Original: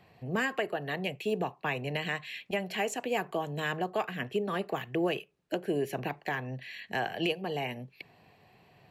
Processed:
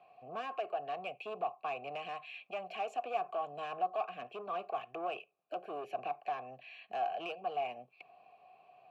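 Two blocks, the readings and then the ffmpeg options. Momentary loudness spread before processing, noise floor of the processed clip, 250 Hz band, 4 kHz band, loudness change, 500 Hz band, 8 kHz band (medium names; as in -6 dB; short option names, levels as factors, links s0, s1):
7 LU, -71 dBFS, -18.5 dB, -11.5 dB, -6.5 dB, -6.5 dB, under -20 dB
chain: -filter_complex "[0:a]asoftclip=type=tanh:threshold=0.0299,asplit=3[s0][s1][s2];[s0]bandpass=f=730:t=q:w=8,volume=1[s3];[s1]bandpass=f=1090:t=q:w=8,volume=0.501[s4];[s2]bandpass=f=2440:t=q:w=8,volume=0.355[s5];[s3][s4][s5]amix=inputs=3:normalize=0,volume=2.37"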